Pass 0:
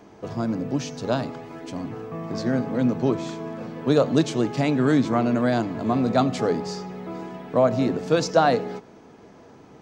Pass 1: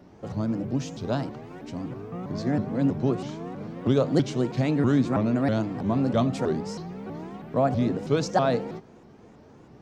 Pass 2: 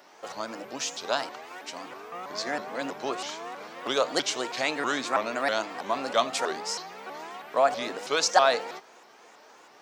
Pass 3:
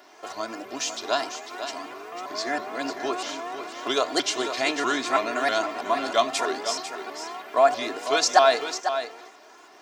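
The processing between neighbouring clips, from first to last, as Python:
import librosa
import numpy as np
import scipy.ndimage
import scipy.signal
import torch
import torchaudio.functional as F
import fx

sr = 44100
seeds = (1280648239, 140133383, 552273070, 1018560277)

y1 = fx.low_shelf(x, sr, hz=200.0, db=9.0)
y1 = fx.vibrato_shape(y1, sr, shape='saw_up', rate_hz=3.1, depth_cents=250.0)
y1 = y1 * 10.0 ** (-5.5 / 20.0)
y2 = scipy.signal.sosfilt(scipy.signal.butter(2, 790.0, 'highpass', fs=sr, output='sos'), y1)
y2 = fx.tilt_eq(y2, sr, slope=1.5)
y2 = y2 * 10.0 ** (7.5 / 20.0)
y3 = y2 + 0.64 * np.pad(y2, (int(2.9 * sr / 1000.0), 0))[:len(y2)]
y3 = y3 + 10.0 ** (-9.5 / 20.0) * np.pad(y3, (int(498 * sr / 1000.0), 0))[:len(y3)]
y3 = y3 * 10.0 ** (1.0 / 20.0)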